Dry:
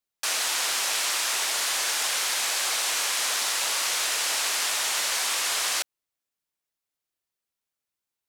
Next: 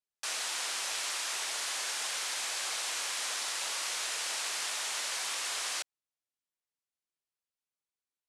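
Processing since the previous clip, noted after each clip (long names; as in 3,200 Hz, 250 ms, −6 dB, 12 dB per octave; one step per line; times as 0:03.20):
low-pass filter 11,000 Hz 24 dB per octave
low-shelf EQ 200 Hz −3 dB
level −8.5 dB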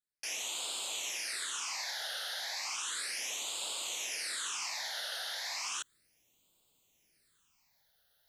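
reversed playback
upward compression, threshold −50 dBFS
reversed playback
all-pass phaser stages 8, 0.34 Hz, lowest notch 310–1,800 Hz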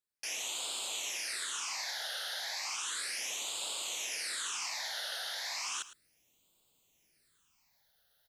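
single-tap delay 108 ms −15 dB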